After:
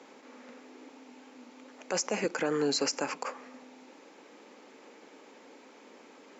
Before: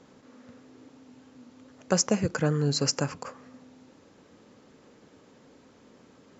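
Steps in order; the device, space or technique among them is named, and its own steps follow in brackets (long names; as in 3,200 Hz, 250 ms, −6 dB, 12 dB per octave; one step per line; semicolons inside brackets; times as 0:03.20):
laptop speaker (high-pass filter 270 Hz 24 dB per octave; parametric band 850 Hz +5.5 dB 0.31 octaves; parametric band 2,300 Hz +7 dB 0.49 octaves; brickwall limiter −23 dBFS, peak gain reduction 13 dB)
level +3 dB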